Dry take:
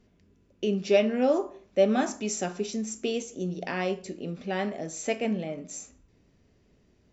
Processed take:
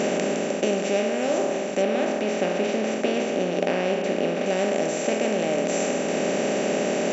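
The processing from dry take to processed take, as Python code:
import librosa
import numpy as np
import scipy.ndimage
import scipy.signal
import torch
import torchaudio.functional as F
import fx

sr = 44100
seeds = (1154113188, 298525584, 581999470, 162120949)

y = fx.bin_compress(x, sr, power=0.2)
y = fx.highpass(y, sr, hz=93.0, slope=6)
y = fx.rider(y, sr, range_db=10, speed_s=0.5)
y = fx.lowpass(y, sr, hz=4500.0, slope=12, at=(1.82, 4.46))
y = y * librosa.db_to_amplitude(-4.5)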